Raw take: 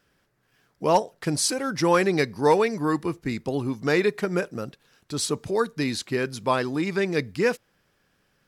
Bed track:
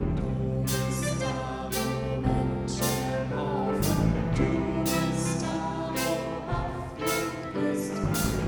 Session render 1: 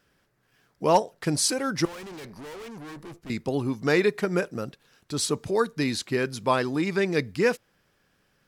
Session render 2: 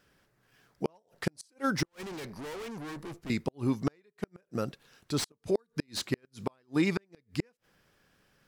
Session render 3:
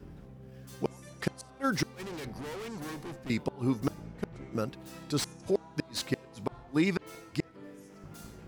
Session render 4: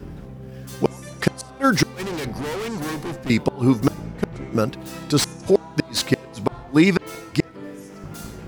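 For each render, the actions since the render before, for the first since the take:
0:01.85–0:03.30: tube saturation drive 39 dB, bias 0.75
gate with flip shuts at −16 dBFS, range −42 dB; slew-rate limiting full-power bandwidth 160 Hz
mix in bed track −21 dB
level +12 dB; brickwall limiter −3 dBFS, peak gain reduction 1 dB

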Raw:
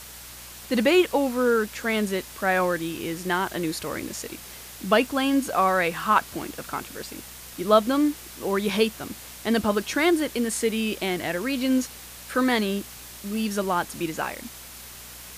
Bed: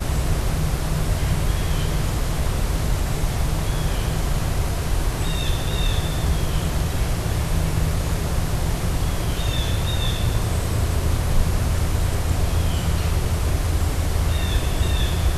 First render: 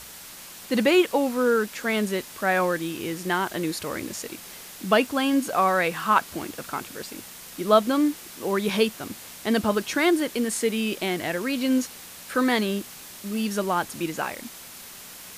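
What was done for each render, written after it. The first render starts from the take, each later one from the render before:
hum removal 60 Hz, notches 2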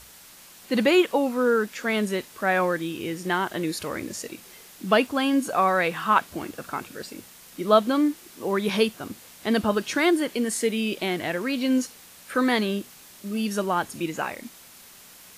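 noise reduction from a noise print 6 dB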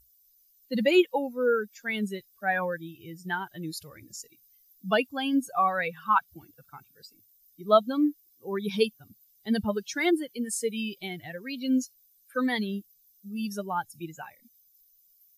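spectral dynamics exaggerated over time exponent 2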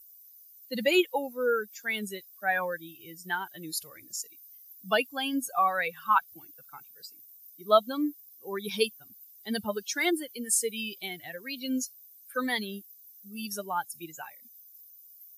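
high-pass filter 440 Hz 6 dB per octave
high-shelf EQ 7,100 Hz +11.5 dB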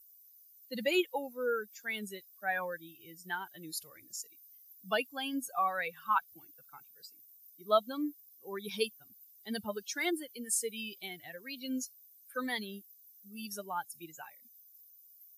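level −6 dB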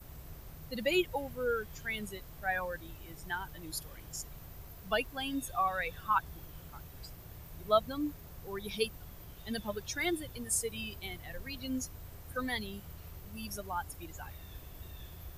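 mix in bed −27.5 dB

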